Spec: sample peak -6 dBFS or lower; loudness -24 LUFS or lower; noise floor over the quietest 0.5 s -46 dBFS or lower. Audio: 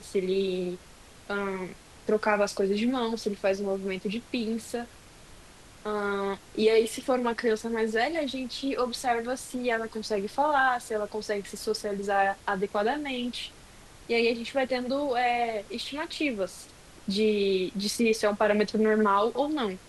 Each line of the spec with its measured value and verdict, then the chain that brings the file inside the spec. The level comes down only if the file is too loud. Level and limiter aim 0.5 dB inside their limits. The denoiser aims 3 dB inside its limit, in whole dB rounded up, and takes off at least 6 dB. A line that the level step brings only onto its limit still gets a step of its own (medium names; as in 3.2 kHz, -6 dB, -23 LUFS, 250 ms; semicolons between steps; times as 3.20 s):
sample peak -11.0 dBFS: pass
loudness -28.0 LUFS: pass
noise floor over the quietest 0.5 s -51 dBFS: pass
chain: none needed